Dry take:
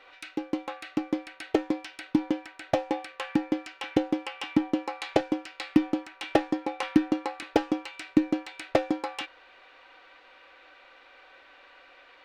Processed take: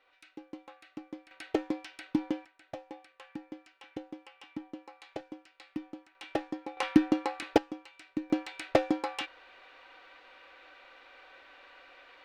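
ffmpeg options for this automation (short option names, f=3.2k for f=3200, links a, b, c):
-af "asetnsamples=n=441:p=0,asendcmd='1.31 volume volume -5dB;2.45 volume volume -17dB;6.15 volume volume -9.5dB;6.77 volume volume -0.5dB;7.58 volume volume -13dB;8.3 volume volume -1dB',volume=-15dB"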